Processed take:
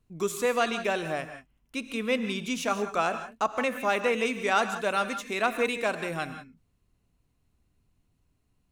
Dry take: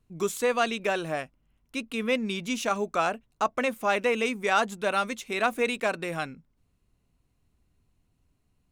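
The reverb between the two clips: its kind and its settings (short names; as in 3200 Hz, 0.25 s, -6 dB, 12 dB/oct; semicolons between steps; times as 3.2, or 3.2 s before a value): non-linear reverb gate 0.2 s rising, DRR 9 dB; gain -1 dB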